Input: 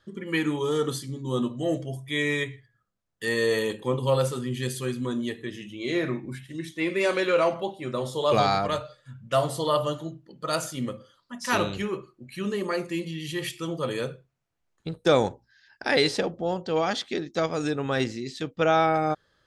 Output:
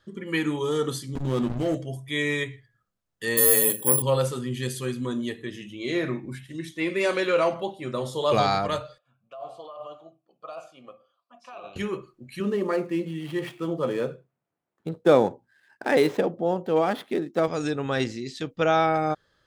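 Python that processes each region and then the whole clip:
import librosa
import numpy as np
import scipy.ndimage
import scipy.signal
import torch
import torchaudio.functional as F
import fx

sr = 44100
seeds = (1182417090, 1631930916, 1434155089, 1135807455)

y = fx.chain(x, sr, fx.backlash(play_db=-29.5),
    fx.env_flatten(amount_pct=70), at=(1.15, 1.75))
y = fx.chain(y, sr, fx.resample_bad(factor=4, down='filtered', up='zero_stuff'),
    fx.overload_stage(gain_db=7.5), at=(3.37, 4.02))
y = fx.chain(y, sr, fx.over_compress(threshold_db=-28.0, ratio=-1.0),
    fx.vowel_filter(vowel='a'), at=(8.98, 11.76))
y = fx.chain(y, sr, fx.median_filter(points=9),
    fx.highpass(hz=180.0, slope=12),
    fx.tilt_shelf(db=4.5, hz=1400.0), at=(12.4, 17.48))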